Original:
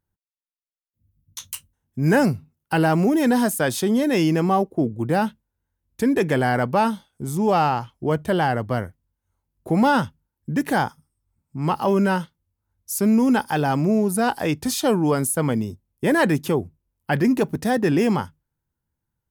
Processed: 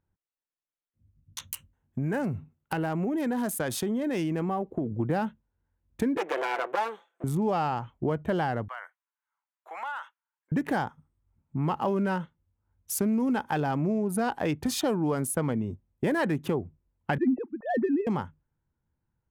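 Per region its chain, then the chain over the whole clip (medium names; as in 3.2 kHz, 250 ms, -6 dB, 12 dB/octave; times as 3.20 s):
1.47–4.92 s: treble shelf 5.1 kHz +7.5 dB + compression 3:1, threshold -27 dBFS
6.17–7.24 s: comb filter that takes the minimum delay 5.9 ms + high-pass 380 Hz 24 dB/octave
8.68–10.52 s: high-pass 1 kHz 24 dB/octave + compression, threshold -32 dBFS
17.18–18.07 s: formants replaced by sine waves + tilt EQ -2 dB/octave
whole clip: local Wiener filter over 9 samples; treble shelf 5.4 kHz -5.5 dB; compression 4:1, threshold -27 dBFS; trim +1.5 dB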